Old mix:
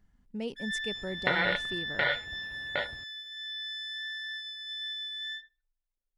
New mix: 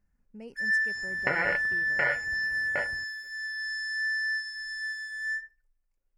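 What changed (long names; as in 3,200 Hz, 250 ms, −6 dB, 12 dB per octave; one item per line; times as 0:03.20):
speech −8.5 dB
first sound +11.0 dB
master: add Butterworth band-reject 3,600 Hz, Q 1.8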